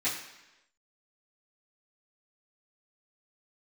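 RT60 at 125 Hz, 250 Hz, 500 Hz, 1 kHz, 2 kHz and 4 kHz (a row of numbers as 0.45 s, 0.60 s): 0.80 s, 0.95 s, 1.0 s, 1.0 s, 1.0 s, 1.0 s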